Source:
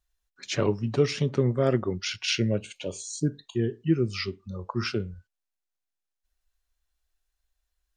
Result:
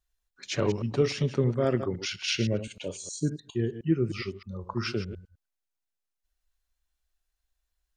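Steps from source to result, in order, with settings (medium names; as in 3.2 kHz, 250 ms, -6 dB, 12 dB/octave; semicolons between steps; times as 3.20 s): chunks repeated in reverse 103 ms, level -11 dB; 3.82–4.61 s: peaking EQ 4.9 kHz -7 dB 1.2 oct; trim -2 dB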